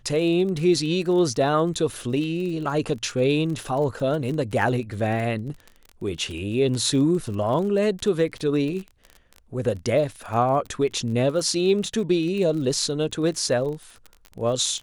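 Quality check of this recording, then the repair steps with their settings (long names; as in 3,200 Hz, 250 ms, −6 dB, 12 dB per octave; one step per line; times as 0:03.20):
surface crackle 31 per second −31 dBFS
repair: click removal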